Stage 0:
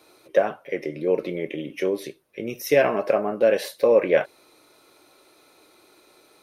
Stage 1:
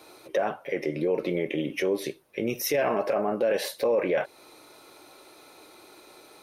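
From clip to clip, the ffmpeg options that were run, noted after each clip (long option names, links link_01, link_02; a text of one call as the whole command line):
ffmpeg -i in.wav -filter_complex "[0:a]equalizer=frequency=840:width_type=o:width=0.44:gain=3.5,asplit=2[link_01][link_02];[link_02]acompressor=threshold=-28dB:ratio=6,volume=3dB[link_03];[link_01][link_03]amix=inputs=2:normalize=0,alimiter=limit=-13.5dB:level=0:latency=1:release=12,volume=-3.5dB" out.wav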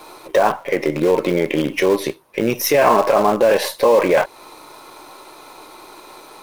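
ffmpeg -i in.wav -filter_complex "[0:a]equalizer=frequency=1000:width=2.7:gain=10.5,asplit=2[link_01][link_02];[link_02]acrusher=bits=5:dc=4:mix=0:aa=0.000001,volume=-9.5dB[link_03];[link_01][link_03]amix=inputs=2:normalize=0,volume=7dB" out.wav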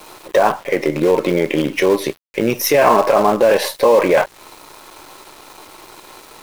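ffmpeg -i in.wav -af "aeval=exprs='val(0)*gte(abs(val(0)),0.0106)':channel_layout=same,volume=1.5dB" out.wav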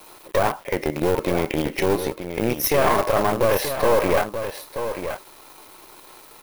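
ffmpeg -i in.wav -af "aeval=exprs='(tanh(2.51*val(0)+0.8)-tanh(0.8))/2.51':channel_layout=same,aexciter=amount=2.6:drive=1.5:freq=9900,aecho=1:1:930:0.355,volume=-2.5dB" out.wav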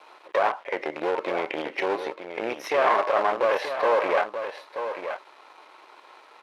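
ffmpeg -i in.wav -af "highpass=560,lowpass=2800" out.wav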